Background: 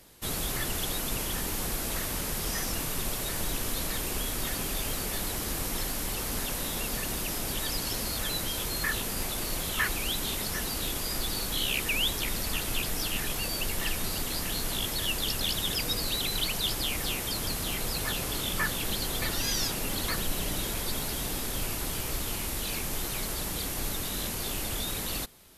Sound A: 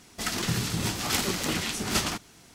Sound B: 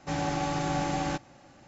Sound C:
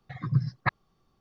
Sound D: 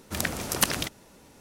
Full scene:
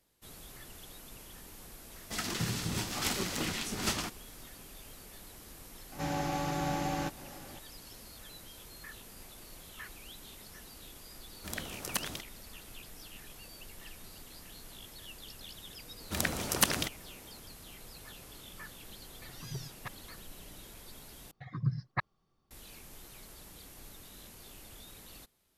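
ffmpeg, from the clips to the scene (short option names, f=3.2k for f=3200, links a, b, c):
-filter_complex "[4:a]asplit=2[a][b];[3:a]asplit=2[c][d];[0:a]volume=-18.5dB[e];[2:a]acompressor=mode=upward:threshold=-35dB:ratio=2.5:attack=3.2:release=140:knee=2.83:detection=peak[f];[c]aeval=exprs='0.141*(abs(mod(val(0)/0.141+3,4)-2)-1)':c=same[g];[e]asplit=2[h][i];[h]atrim=end=21.314[j];[d]atrim=end=1.2,asetpts=PTS-STARTPTS,volume=-6.5dB[k];[i]atrim=start=22.506[l];[1:a]atrim=end=2.54,asetpts=PTS-STARTPTS,volume=-6dB,afade=t=in:d=0.004:c=hsin,afade=t=out:st=2.536:d=0.004:c=hsin,adelay=1920[m];[f]atrim=end=1.67,asetpts=PTS-STARTPTS,volume=-4dB,afade=t=in:d=0.004:c=hsin,afade=t=out:st=1.666:d=0.004:c=hsin,adelay=5920[n];[a]atrim=end=1.4,asetpts=PTS-STARTPTS,volume=-11dB,afade=t=in:d=0.004:c=hsin,afade=t=out:st=1.396:d=0.004:c=hsin,adelay=11330[o];[b]atrim=end=1.4,asetpts=PTS-STARTPTS,volume=-3dB,afade=t=in:d=0.004:c=hsin,afade=t=out:st=1.396:d=0.004:c=hsin,adelay=16000[p];[g]atrim=end=1.2,asetpts=PTS-STARTPTS,volume=-15.5dB,afade=t=in:d=0.004:c=hsin,afade=t=out:st=1.196:d=0.004:c=hsin,adelay=19190[q];[j][k]acrossfade=d=0.004:c1=hsin:c2=hsin[r];[r][l]acrossfade=d=0.004:c1=hsin:c2=hsin[s];[s][m][n][o][p][q]amix=inputs=6:normalize=0"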